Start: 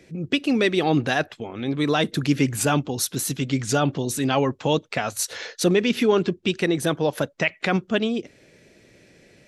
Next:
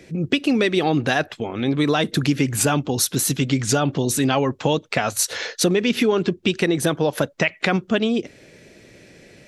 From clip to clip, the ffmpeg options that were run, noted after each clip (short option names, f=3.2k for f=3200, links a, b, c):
-af "acompressor=threshold=-21dB:ratio=6,volume=6dB"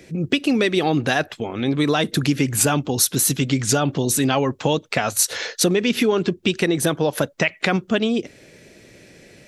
-af "highshelf=f=8.4k:g=6"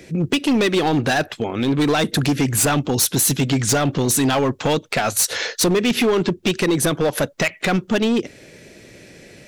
-af "asoftclip=type=hard:threshold=-17dB,volume=3.5dB"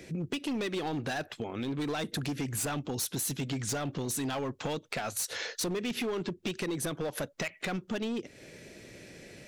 -af "acompressor=threshold=-30dB:ratio=2.5,volume=-6dB"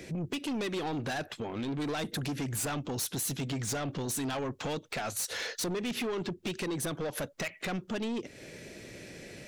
-af "asoftclip=type=tanh:threshold=-32.5dB,volume=3dB"